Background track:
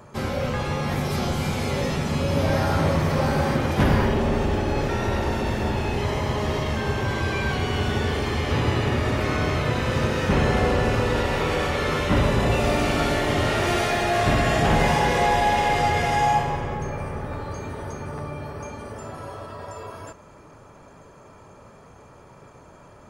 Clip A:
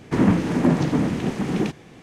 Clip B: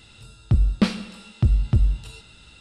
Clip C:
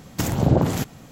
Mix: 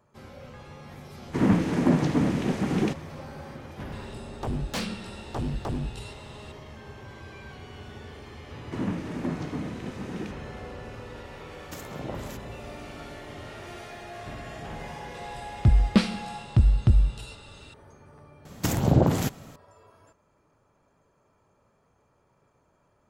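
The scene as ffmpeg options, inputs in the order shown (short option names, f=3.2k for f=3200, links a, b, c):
-filter_complex "[1:a]asplit=2[a][b];[2:a]asplit=2[c][d];[3:a]asplit=2[e][f];[0:a]volume=-19dB[g];[a]dynaudnorm=f=120:g=3:m=5dB[h];[c]aeval=exprs='0.0668*(abs(mod(val(0)/0.0668+3,4)-2)-1)':c=same[i];[e]highpass=f=300:p=1[j];[h]atrim=end=2.02,asetpts=PTS-STARTPTS,volume=-7dB,afade=t=in:d=0.004:c=hsin,afade=t=out:st=2.016:d=0.004:c=hsin,adelay=1220[k];[i]atrim=end=2.6,asetpts=PTS-STARTPTS,volume=-1dB,afade=t=in:d=0.004:c=hsin,afade=t=out:st=2.596:d=0.004:c=hsin,adelay=3920[l];[b]atrim=end=2.02,asetpts=PTS-STARTPTS,volume=-12.5dB,afade=t=in:d=0.004:c=hsin,afade=t=out:st=2.016:d=0.004:c=hsin,adelay=8600[m];[j]atrim=end=1.11,asetpts=PTS-STARTPTS,volume=-14dB,afade=t=in:d=0.004:c=hsin,afade=t=out:st=1.106:d=0.004:c=hsin,adelay=11530[n];[d]atrim=end=2.6,asetpts=PTS-STARTPTS,volume=-0.5dB,afade=t=in:d=0.004:c=hsin,afade=t=out:st=2.596:d=0.004:c=hsin,adelay=15140[o];[f]atrim=end=1.11,asetpts=PTS-STARTPTS,volume=-2dB,afade=t=in:d=0.004:c=hsin,afade=t=out:st=1.106:d=0.004:c=hsin,adelay=18450[p];[g][k][l][m][n][o][p]amix=inputs=7:normalize=0"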